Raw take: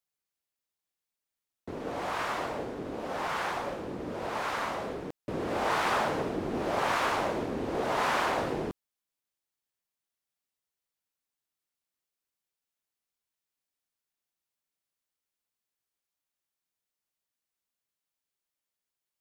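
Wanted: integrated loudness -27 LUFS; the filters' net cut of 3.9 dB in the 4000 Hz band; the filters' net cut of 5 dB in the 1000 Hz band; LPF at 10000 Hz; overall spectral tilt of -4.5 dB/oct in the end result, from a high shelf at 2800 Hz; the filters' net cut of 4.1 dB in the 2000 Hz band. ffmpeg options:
-af "lowpass=10k,equalizer=f=1k:t=o:g=-6,equalizer=f=2k:t=o:g=-3.5,highshelf=f=2.8k:g=6,equalizer=f=4k:t=o:g=-8.5,volume=7.5dB"

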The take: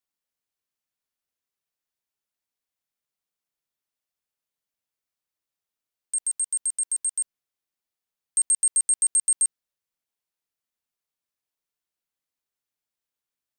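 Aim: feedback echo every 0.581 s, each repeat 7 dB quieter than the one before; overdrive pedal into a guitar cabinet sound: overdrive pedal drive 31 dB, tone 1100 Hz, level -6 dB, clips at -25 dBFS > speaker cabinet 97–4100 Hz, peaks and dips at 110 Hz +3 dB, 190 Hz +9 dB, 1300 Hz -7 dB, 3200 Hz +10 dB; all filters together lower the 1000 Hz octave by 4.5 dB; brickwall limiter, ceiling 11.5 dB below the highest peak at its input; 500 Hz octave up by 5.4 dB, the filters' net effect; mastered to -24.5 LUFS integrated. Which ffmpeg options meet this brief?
-filter_complex "[0:a]equalizer=f=500:t=o:g=8.5,equalizer=f=1k:t=o:g=-6.5,alimiter=level_in=3dB:limit=-24dB:level=0:latency=1,volume=-3dB,aecho=1:1:581|1162|1743|2324|2905:0.447|0.201|0.0905|0.0407|0.0183,asplit=2[a][b];[b]highpass=f=720:p=1,volume=31dB,asoftclip=type=tanh:threshold=-25dB[c];[a][c]amix=inputs=2:normalize=0,lowpass=f=1.1k:p=1,volume=-6dB,highpass=97,equalizer=f=110:t=q:w=4:g=3,equalizer=f=190:t=q:w=4:g=9,equalizer=f=1.3k:t=q:w=4:g=-7,equalizer=f=3.2k:t=q:w=4:g=10,lowpass=f=4.1k:w=0.5412,lowpass=f=4.1k:w=1.3066,volume=29dB"

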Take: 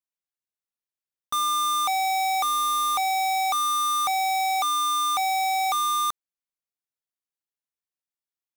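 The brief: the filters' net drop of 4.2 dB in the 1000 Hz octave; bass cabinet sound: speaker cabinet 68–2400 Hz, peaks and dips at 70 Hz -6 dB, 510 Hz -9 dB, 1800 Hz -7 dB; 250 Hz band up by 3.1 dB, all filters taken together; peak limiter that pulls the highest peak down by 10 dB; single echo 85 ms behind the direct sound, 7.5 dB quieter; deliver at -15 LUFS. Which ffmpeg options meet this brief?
-af "equalizer=f=250:t=o:g=5,equalizer=f=1k:t=o:g=-5,alimiter=level_in=7.5dB:limit=-24dB:level=0:latency=1,volume=-7.5dB,highpass=f=68:w=0.5412,highpass=f=68:w=1.3066,equalizer=f=70:t=q:w=4:g=-6,equalizer=f=510:t=q:w=4:g=-9,equalizer=f=1.8k:t=q:w=4:g=-7,lowpass=f=2.4k:w=0.5412,lowpass=f=2.4k:w=1.3066,aecho=1:1:85:0.422,volume=21dB"

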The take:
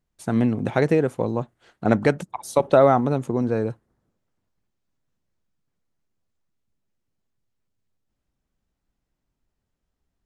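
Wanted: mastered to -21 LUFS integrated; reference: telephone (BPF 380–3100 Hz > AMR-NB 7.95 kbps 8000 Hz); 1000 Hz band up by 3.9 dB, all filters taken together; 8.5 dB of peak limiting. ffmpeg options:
-af "equalizer=f=1k:t=o:g=6,alimiter=limit=-9dB:level=0:latency=1,highpass=380,lowpass=3.1k,volume=6dB" -ar 8000 -c:a libopencore_amrnb -b:a 7950

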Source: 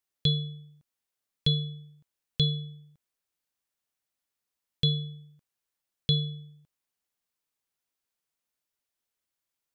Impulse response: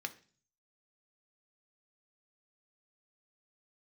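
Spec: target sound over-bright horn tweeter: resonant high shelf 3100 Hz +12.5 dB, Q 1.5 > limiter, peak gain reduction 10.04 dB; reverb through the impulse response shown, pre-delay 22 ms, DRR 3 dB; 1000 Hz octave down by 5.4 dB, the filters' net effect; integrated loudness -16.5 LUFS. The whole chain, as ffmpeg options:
-filter_complex "[0:a]equalizer=f=1k:t=o:g=-6.5,asplit=2[a][b];[1:a]atrim=start_sample=2205,adelay=22[c];[b][c]afir=irnorm=-1:irlink=0,volume=-3.5dB[d];[a][d]amix=inputs=2:normalize=0,highshelf=f=3.1k:t=q:w=1.5:g=12.5,volume=10dB,alimiter=limit=-6.5dB:level=0:latency=1"

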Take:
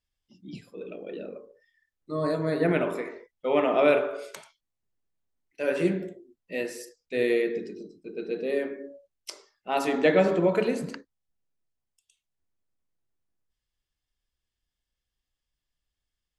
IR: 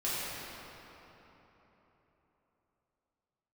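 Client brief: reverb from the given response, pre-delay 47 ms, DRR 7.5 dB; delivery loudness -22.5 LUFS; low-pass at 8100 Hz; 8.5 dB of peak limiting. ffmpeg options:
-filter_complex "[0:a]lowpass=8.1k,alimiter=limit=-17dB:level=0:latency=1,asplit=2[a][b];[1:a]atrim=start_sample=2205,adelay=47[c];[b][c]afir=irnorm=-1:irlink=0,volume=-15.5dB[d];[a][d]amix=inputs=2:normalize=0,volume=7.5dB"

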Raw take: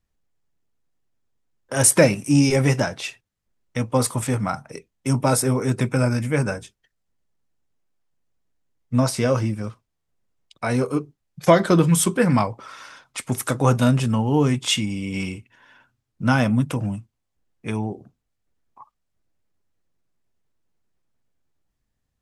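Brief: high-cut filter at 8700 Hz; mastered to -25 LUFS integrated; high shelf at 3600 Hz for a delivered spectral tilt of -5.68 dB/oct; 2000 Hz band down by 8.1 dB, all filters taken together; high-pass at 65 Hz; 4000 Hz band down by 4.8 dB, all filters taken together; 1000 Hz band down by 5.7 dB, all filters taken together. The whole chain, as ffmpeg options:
-af "highpass=65,lowpass=8.7k,equalizer=f=1k:t=o:g=-5.5,equalizer=f=2k:t=o:g=-8.5,highshelf=f=3.6k:g=4.5,equalizer=f=4k:t=o:g=-7,volume=-3dB"

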